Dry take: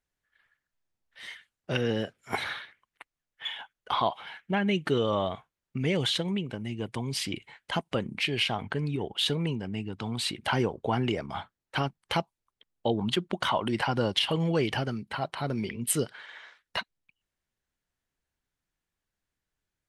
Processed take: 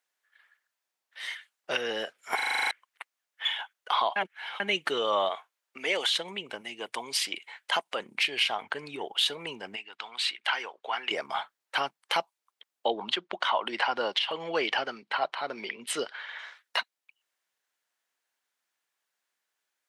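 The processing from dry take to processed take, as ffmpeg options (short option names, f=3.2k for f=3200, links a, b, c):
-filter_complex "[0:a]asettb=1/sr,asplit=3[a][b][c];[a]atrim=end=5.294[d];[b]atrim=start=5.29:end=6.07,asetpts=PTS-STARTPTS,afade=t=in:d=0.004:c=qsin,afade=t=out:st=0.776:d=0.004:c=qsin,highpass=330[e];[c]atrim=start=6.066[f];[d][e]acrossfade=d=0.004:c1=hsin:c2=qsin[g];[g][f]acrossfade=d=0.004:c1=qsin:c2=hsin,asettb=1/sr,asplit=3[h][i][j];[h]atrim=end=6.614[k];[i]atrim=start=6.61:end=8,asetpts=PTS-STARTPTS,afade=t=in:d=0.004:c=qsin,afade=t=out:st=1.386:d=0.004:c=qsin,highpass=f=260:p=1[l];[j]atrim=start=7.996[m];[k][l]acrossfade=d=0.004:c1=hsin:c2=qsin[n];[n][m]acrossfade=d=0.004:c1=qsin:c2=hsin,asplit=3[o][p][q];[o]afade=t=out:st=9.75:d=0.02[r];[p]bandpass=f=2.3k:t=q:w=0.84,afade=t=in:st=9.75:d=0.02,afade=t=out:st=11.1:d=0.02[s];[q]afade=t=in:st=11.1:d=0.02[t];[r][s][t]amix=inputs=3:normalize=0,asettb=1/sr,asplit=3[u][v][w];[u]atrim=end=12.864[x];[v]atrim=start=12.86:end=16.39,asetpts=PTS-STARTPTS,afade=t=in:d=0.004:c=qsin,afade=t=out:st=3.526:d=0.004:c=qsin,highpass=160,lowpass=4.6k[y];[w]atrim=start=16.386[z];[x][y]acrossfade=d=0.004:c1=hsin:c2=qsin[aa];[aa][z]acrossfade=d=0.004:c1=qsin:c2=hsin,asplit=12[ab][ac][ad][ae][af][ag][ah][ai][aj][ak][al][am];[ab]atrim=end=2.392[an];[ac]atrim=start=2.348:end=2.392[ao];[ad]atrim=start=2.348:end=2.392[ap];[ae]atrim=start=2.348:end=2.392[aq];[af]atrim=start=2.348:end=2.392[ar];[ag]atrim=start=2.348:end=2.392[as];[ah]atrim=start=2.348:end=2.392[at];[ai]atrim=start=2.348:end=2.392[au];[aj]atrim=start=2.348:end=2.392[av];[ak]atrim=start=2.708:end=4.162[aw];[al]atrim=start=4.158:end=4.602,asetpts=PTS-STARTPTS,areverse[ax];[am]atrim=start=4.598[ay];[an][ao]acrossfade=d=0.004:c1=hsin:c2=hsin[az];[az][ap]acrossfade=d=0.004:c1=hsin:c2=hsin[ba];[ba][aq]acrossfade=d=0.004:c1=hsin:c2=hsin[bb];[bb][ar]acrossfade=d=0.004:c1=hsin:c2=hsin[bc];[bc][as]acrossfade=d=0.004:c1=hsin:c2=hsin[bd];[bd][at]acrossfade=d=0.004:c1=hsin:c2=hsin[be];[be][au]acrossfade=d=0.004:c1=hsin:c2=hsin[bf];[bf][av]acrossfade=d=0.004:c1=hsin:c2=hsin[bg];[bg][aw]acrossfade=d=0.004:c1=hsin:c2=hsin[bh];[bh][ax]acrossfade=d=0.004:c1=hsin:c2=hsin[bi];[bi][ay]acrossfade=d=0.004:c1=hsin:c2=hsin,highpass=660,alimiter=limit=-21dB:level=0:latency=1:release=426,volume=6dB"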